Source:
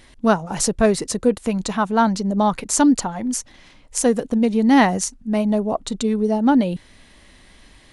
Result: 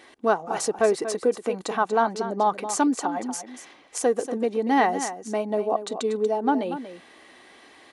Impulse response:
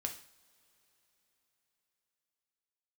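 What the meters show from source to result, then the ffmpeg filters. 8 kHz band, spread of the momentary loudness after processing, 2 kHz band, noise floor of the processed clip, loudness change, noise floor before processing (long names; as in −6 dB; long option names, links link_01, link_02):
−8.0 dB, 9 LU, −4.0 dB, −52 dBFS, −5.5 dB, −50 dBFS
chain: -filter_complex "[0:a]acompressor=threshold=-31dB:ratio=1.5,highpass=390,highshelf=frequency=2200:gain=-11,aecho=1:1:2.6:0.33,asplit=2[link_01][link_02];[link_02]aecho=0:1:237:0.282[link_03];[link_01][link_03]amix=inputs=2:normalize=0,volume=5.5dB"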